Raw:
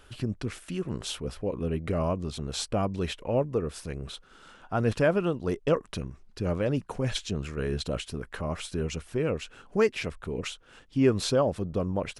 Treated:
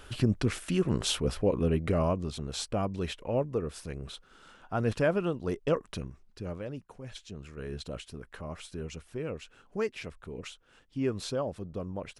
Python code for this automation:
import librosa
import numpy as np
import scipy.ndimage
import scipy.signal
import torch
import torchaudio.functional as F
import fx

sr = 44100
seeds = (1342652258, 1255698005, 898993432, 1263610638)

y = fx.gain(x, sr, db=fx.line((1.4, 5.0), (2.51, -3.0), (6.03, -3.0), (6.99, -15.5), (7.74, -8.0)))